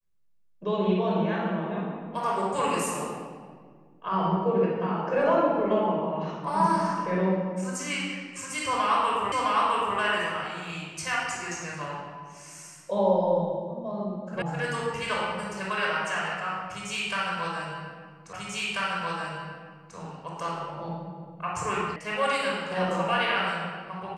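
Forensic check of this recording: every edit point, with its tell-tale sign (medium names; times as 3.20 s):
9.32 s: repeat of the last 0.66 s
14.42 s: sound stops dead
18.33 s: repeat of the last 1.64 s
21.96 s: sound stops dead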